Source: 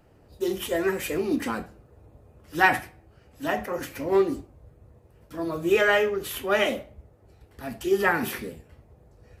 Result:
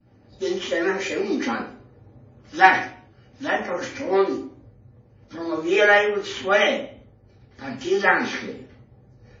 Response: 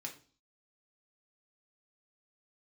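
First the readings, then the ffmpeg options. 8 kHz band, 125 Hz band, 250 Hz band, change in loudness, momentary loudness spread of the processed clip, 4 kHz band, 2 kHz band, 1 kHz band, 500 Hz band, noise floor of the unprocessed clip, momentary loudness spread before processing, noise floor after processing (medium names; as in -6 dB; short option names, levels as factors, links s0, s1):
0.0 dB, -2.0 dB, +2.0 dB, +4.0 dB, 20 LU, +5.0 dB, +5.0 dB, +6.5 dB, +2.5 dB, -57 dBFS, 15 LU, -54 dBFS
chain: -filter_complex "[0:a]acrossover=split=290[s0][s1];[s0]acompressor=threshold=0.00631:ratio=6[s2];[s1]agate=range=0.0224:threshold=0.00141:ratio=3:detection=peak[s3];[s2][s3]amix=inputs=2:normalize=0[s4];[1:a]atrim=start_sample=2205,asetrate=39690,aresample=44100[s5];[s4][s5]afir=irnorm=-1:irlink=0,volume=2.11" -ar 16000 -c:a wmav2 -b:a 32k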